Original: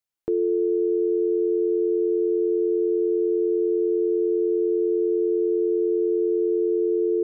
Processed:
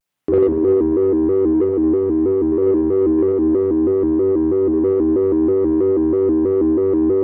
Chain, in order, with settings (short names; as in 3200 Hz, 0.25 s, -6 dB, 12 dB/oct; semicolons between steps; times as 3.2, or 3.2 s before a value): octaver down 2 oct, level -4 dB; 1.54–2.52 bell 540 Hz -13.5 dB 0.27 oct; 3.17–4.69 notch 410 Hz, Q 12; spring tank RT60 1.7 s, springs 49 ms, chirp 45 ms, DRR -7.5 dB; in parallel at -4.5 dB: soft clip -22 dBFS, distortion -13 dB; on the sum: HPF 87 Hz; on a send: split-band echo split 400 Hz, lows 0.178 s, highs 0.359 s, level -14.5 dB; on the sum: shaped vibrato square 3.1 Hz, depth 160 cents; gain +3 dB